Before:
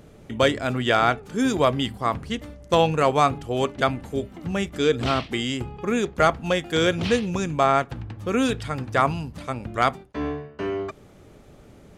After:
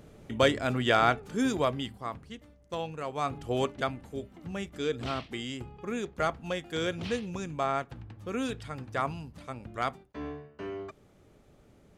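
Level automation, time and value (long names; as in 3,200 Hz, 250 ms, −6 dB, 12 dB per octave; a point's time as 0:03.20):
0:01.30 −4 dB
0:02.41 −16.5 dB
0:03.10 −16.5 dB
0:03.51 −3.5 dB
0:03.92 −10.5 dB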